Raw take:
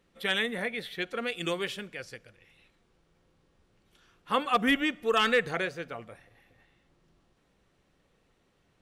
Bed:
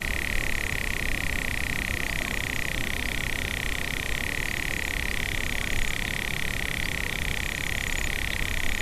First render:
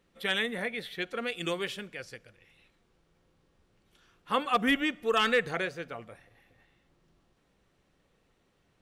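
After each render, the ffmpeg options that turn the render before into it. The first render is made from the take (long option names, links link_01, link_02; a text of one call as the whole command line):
ffmpeg -i in.wav -af "volume=-1dB" out.wav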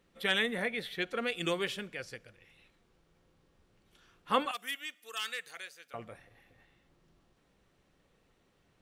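ffmpeg -i in.wav -filter_complex "[0:a]asettb=1/sr,asplit=3[link_01][link_02][link_03];[link_01]atrim=end=4.514[link_04];[link_02]atrim=start=4.51:end=5.94,asetpts=PTS-STARTPTS,afade=type=in:duration=0.004:curve=qsin,afade=type=out:start_time=1.426:duration=0.004:curve=qsin,aderivative[link_05];[link_03]atrim=start=5.936[link_06];[link_04][link_05]acrossfade=duration=0.004:curve1=hsin:curve2=qsin[link_07];[link_07][link_06]acrossfade=duration=0.004:curve1=qsin:curve2=hsin" out.wav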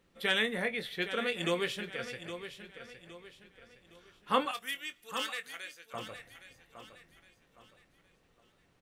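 ffmpeg -i in.wav -filter_complex "[0:a]asplit=2[link_01][link_02];[link_02]adelay=23,volume=-11dB[link_03];[link_01][link_03]amix=inputs=2:normalize=0,aecho=1:1:814|1628|2442|3256:0.282|0.104|0.0386|0.0143" out.wav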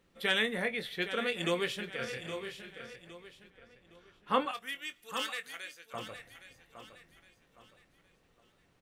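ffmpeg -i in.wav -filter_complex "[0:a]asettb=1/sr,asplit=3[link_01][link_02][link_03];[link_01]atrim=end=1.984[link_04];[link_02]atrim=start=1.98:end=2.96,asetpts=PTS-STARTPTS,afade=type=in:duration=0.004:curve=qsin,afade=type=out:start_time=0.976:duration=0.004:curve=qsin,asplit=2[link_05][link_06];[link_06]adelay=31,volume=-2dB[link_07];[link_05][link_07]amix=inputs=2:normalize=0,atrim=end_sample=43218[link_08];[link_03]atrim=start=2.956[link_09];[link_04][link_08]acrossfade=duration=0.004:curve1=hsin:curve2=qsin[link_10];[link_10][link_09]acrossfade=duration=0.004:curve1=qsin:curve2=hsin,asettb=1/sr,asplit=3[link_11][link_12][link_13];[link_11]atrim=end=3.504[link_14];[link_12]atrim=start=3.5:end=4.82,asetpts=PTS-STARTPTS,afade=type=in:duration=0.004:curve=qsin,afade=type=out:start_time=1.316:duration=0.004:curve=qsin,highshelf=frequency=4100:gain=-8[link_15];[link_13]atrim=start=4.816[link_16];[link_14][link_15]acrossfade=duration=0.004:curve1=hsin:curve2=qsin[link_17];[link_17][link_16]acrossfade=duration=0.004:curve1=qsin:curve2=hsin" out.wav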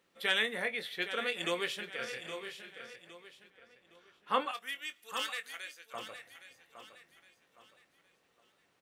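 ffmpeg -i in.wav -af "highpass=frequency=500:poles=1" out.wav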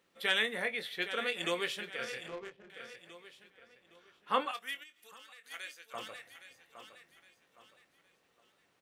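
ffmpeg -i in.wav -filter_complex "[0:a]asettb=1/sr,asplit=3[link_01][link_02][link_03];[link_01]atrim=end=2.284[link_04];[link_02]atrim=start=2.28:end=2.7,asetpts=PTS-STARTPTS,afade=type=in:duration=0.004:curve=qsin,afade=type=out:start_time=0.416:duration=0.004:curve=qsin,adynamicsmooth=sensitivity=7.5:basefreq=530[link_05];[link_03]atrim=start=2.696[link_06];[link_04][link_05]acrossfade=duration=0.004:curve1=hsin:curve2=qsin[link_07];[link_07][link_06]acrossfade=duration=0.004:curve1=qsin:curve2=hsin,asplit=3[link_08][link_09][link_10];[link_08]afade=type=out:start_time=4.82:duration=0.02[link_11];[link_09]acompressor=threshold=-53dB:ratio=5:attack=3.2:release=140:knee=1:detection=peak,afade=type=in:start_time=4.82:duration=0.02,afade=type=out:start_time=5.5:duration=0.02[link_12];[link_10]afade=type=in:start_time=5.5:duration=0.02[link_13];[link_11][link_12][link_13]amix=inputs=3:normalize=0" out.wav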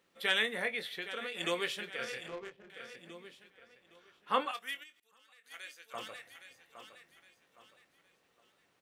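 ffmpeg -i in.wav -filter_complex "[0:a]asettb=1/sr,asplit=3[link_01][link_02][link_03];[link_01]atrim=end=0.834[link_04];[link_02]atrim=start=0.83:end=1.35,asetpts=PTS-STARTPTS,afade=type=in:duration=0.004:curve=qsin,afade=type=out:start_time=0.516:duration=0.004:curve=qsin,acompressor=threshold=-35dB:ratio=6:attack=3.2:release=140:knee=1:detection=peak[link_05];[link_03]atrim=start=1.346[link_06];[link_04][link_05]acrossfade=duration=0.004:curve1=hsin:curve2=qsin[link_07];[link_07][link_06]acrossfade=duration=0.004:curve1=qsin:curve2=hsin,asettb=1/sr,asplit=3[link_08][link_09][link_10];[link_08]atrim=end=2.954[link_11];[link_09]atrim=start=2.95:end=3.35,asetpts=PTS-STARTPTS,afade=type=in:duration=0.004:curve=qsin,afade=type=out:start_time=0.396:duration=0.004:curve=qsin,equalizer=frequency=230:width_type=o:width=1:gain=14.5[link_12];[link_10]atrim=start=3.346[link_13];[link_11][link_12]acrossfade=duration=0.004:curve1=hsin:curve2=qsin[link_14];[link_14][link_13]acrossfade=duration=0.004:curve1=qsin:curve2=hsin,asplit=2[link_15][link_16];[link_15]atrim=end=5,asetpts=PTS-STARTPTS,afade=type=out:start_time=4.996:duration=0.004:curve=hsin:silence=0.0749894[link_17];[link_16]atrim=start=5,asetpts=PTS-STARTPTS,afade=type=in:duration=0.92:silence=0.0749894[link_18];[link_17][link_18]concat=n=2:v=0:a=1" out.wav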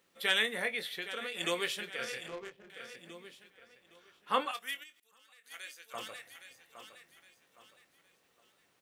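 ffmpeg -i in.wav -af "highshelf=frequency=5600:gain=7" out.wav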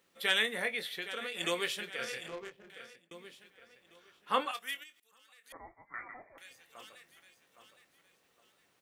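ffmpeg -i in.wav -filter_complex "[0:a]asettb=1/sr,asplit=3[link_01][link_02][link_03];[link_01]atrim=end=5.524[link_04];[link_02]atrim=start=5.52:end=6.38,asetpts=PTS-STARTPTS,afade=type=in:duration=0.004:curve=qsin,afade=type=out:start_time=0.856:duration=0.004:curve=qsin,lowpass=frequency=2100:width_type=q:width=0.5098,lowpass=frequency=2100:width_type=q:width=0.6013,lowpass=frequency=2100:width_type=q:width=0.9,lowpass=frequency=2100:width_type=q:width=2.563,afreqshift=-2500[link_05];[link_03]atrim=start=6.376[link_06];[link_04][link_05]acrossfade=duration=0.004:curve1=hsin:curve2=qsin[link_07];[link_07][link_06]acrossfade=duration=0.004:curve1=qsin:curve2=hsin,asplit=2[link_08][link_09];[link_08]atrim=end=3.11,asetpts=PTS-STARTPTS,afade=type=out:start_time=2.71:duration=0.4[link_10];[link_09]atrim=start=3.11,asetpts=PTS-STARTPTS,afade=type=in:duration=0.004:curve=hsin[link_11];[link_10][link_11]concat=n=2:v=0:a=1" out.wav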